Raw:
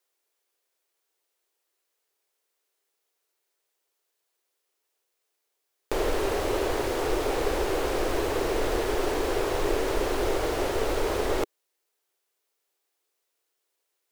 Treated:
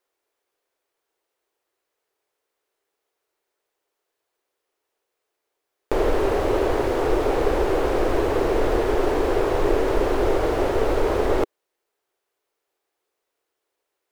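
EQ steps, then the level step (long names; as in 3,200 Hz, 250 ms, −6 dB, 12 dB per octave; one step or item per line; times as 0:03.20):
high-shelf EQ 2,500 Hz −12 dB
+6.5 dB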